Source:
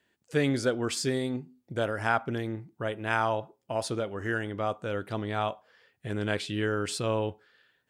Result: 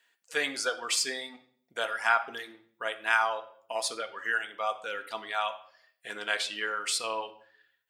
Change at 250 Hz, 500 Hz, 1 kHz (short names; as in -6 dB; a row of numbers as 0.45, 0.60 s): -16.5, -6.5, +1.0 dB